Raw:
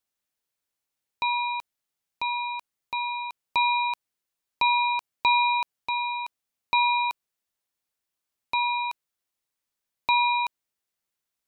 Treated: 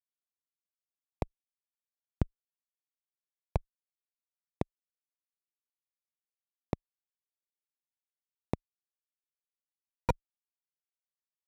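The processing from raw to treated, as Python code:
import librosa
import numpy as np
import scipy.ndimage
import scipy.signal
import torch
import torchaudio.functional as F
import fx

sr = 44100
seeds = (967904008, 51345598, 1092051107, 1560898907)

y = fx.recorder_agc(x, sr, target_db=-16.5, rise_db_per_s=9.5, max_gain_db=30)
y = fx.low_shelf(y, sr, hz=380.0, db=-11.5)
y = fx.level_steps(y, sr, step_db=18)
y = fx.schmitt(y, sr, flips_db=-23.0)
y = scipy.signal.sosfilt(scipy.signal.butter(2, 110.0, 'highpass', fs=sr, output='sos'), y)
y = fx.tilt_eq(y, sr, slope=-4.0)
y = y * 10.0 ** (15.0 / 20.0)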